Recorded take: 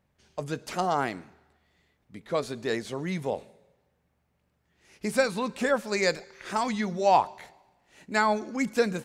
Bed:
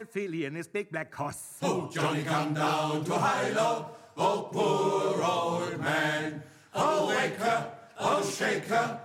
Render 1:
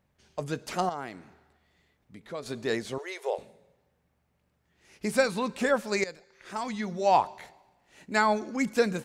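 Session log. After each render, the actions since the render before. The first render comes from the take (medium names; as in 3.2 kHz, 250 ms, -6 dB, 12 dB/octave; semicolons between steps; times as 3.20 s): 0.89–2.46 s: compression 1.5:1, threshold -49 dBFS; 2.98–3.38 s: brick-wall FIR high-pass 350 Hz; 6.04–7.34 s: fade in linear, from -17.5 dB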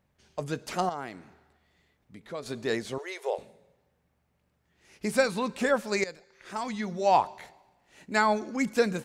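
no audible change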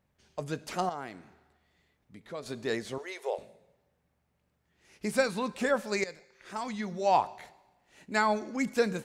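feedback comb 52 Hz, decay 0.8 s, harmonics all, mix 30%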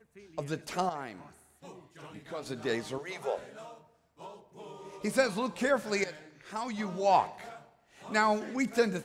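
add bed -20.5 dB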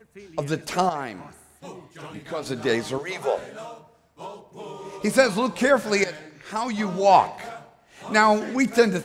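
trim +9 dB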